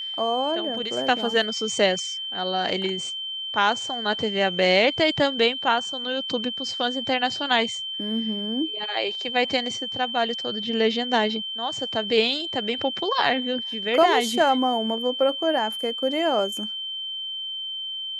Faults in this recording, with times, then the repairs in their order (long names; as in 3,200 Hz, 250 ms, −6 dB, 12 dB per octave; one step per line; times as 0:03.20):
whistle 3,100 Hz −29 dBFS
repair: notch filter 3,100 Hz, Q 30